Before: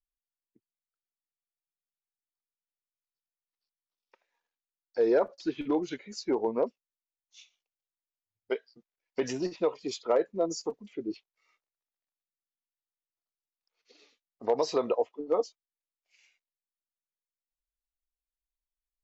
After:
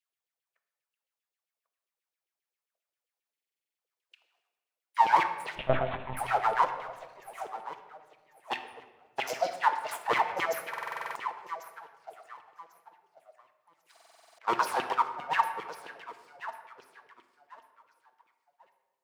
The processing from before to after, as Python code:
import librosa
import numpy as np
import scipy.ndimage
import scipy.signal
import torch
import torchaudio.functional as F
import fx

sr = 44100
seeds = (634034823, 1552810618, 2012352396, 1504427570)

y = fx.low_shelf(x, sr, hz=330.0, db=-10.0, at=(14.6, 15.04))
y = np.abs(y)
y = fx.echo_feedback(y, sr, ms=1095, feedback_pct=25, wet_db=-13.5)
y = fx.filter_lfo_highpass(y, sr, shape='saw_down', hz=7.5, low_hz=360.0, high_hz=3000.0, q=4.8)
y = scipy.signal.sosfilt(scipy.signal.butter(2, 79.0, 'highpass', fs=sr, output='sos'), y)
y = fx.lpc_monotone(y, sr, seeds[0], pitch_hz=130.0, order=8, at=(5.55, 6.17))
y = fx.room_shoebox(y, sr, seeds[1], volume_m3=1000.0, walls='mixed', distance_m=0.69)
y = fx.buffer_glitch(y, sr, at_s=(3.32, 10.69, 13.92), block=2048, repeats=9)
y = F.gain(torch.from_numpy(y), 1.5).numpy()